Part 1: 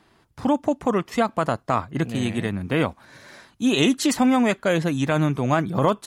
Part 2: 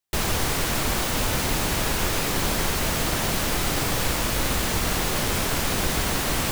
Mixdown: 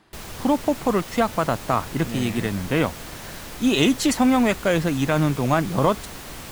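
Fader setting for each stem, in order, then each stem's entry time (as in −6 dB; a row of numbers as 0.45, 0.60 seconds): +0.5, −12.5 decibels; 0.00, 0.00 seconds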